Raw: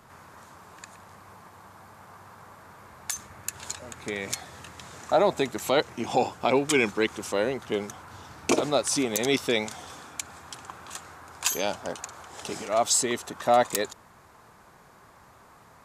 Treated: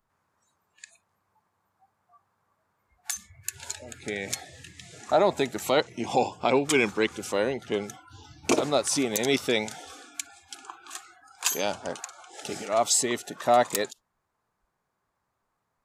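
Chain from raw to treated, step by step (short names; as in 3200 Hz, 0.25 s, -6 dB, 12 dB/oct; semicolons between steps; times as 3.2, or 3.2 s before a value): spectral noise reduction 25 dB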